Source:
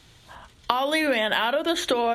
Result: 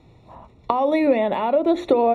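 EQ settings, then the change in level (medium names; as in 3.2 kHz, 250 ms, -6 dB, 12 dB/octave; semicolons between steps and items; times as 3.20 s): boxcar filter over 28 samples; bass shelf 83 Hz -9.5 dB; +8.5 dB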